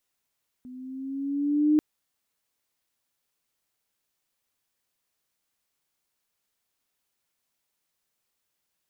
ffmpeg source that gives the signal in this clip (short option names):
-f lavfi -i "aevalsrc='pow(10,(-16+24*(t/1.14-1))/20)*sin(2*PI*250*1.14/(3.5*log(2)/12)*(exp(3.5*log(2)/12*t/1.14)-1))':d=1.14:s=44100"